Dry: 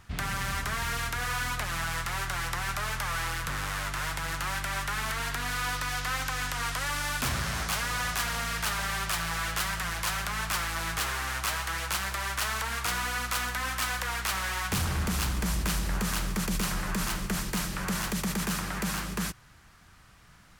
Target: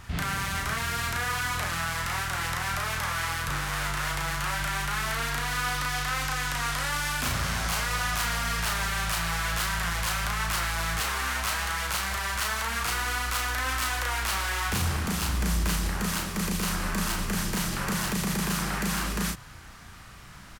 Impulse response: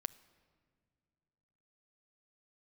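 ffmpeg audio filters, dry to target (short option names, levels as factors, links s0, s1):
-filter_complex "[0:a]alimiter=level_in=2.11:limit=0.0631:level=0:latency=1:release=62,volume=0.473,asplit=2[s0][s1];[s1]adelay=35,volume=0.75[s2];[s0][s2]amix=inputs=2:normalize=0,volume=2.37"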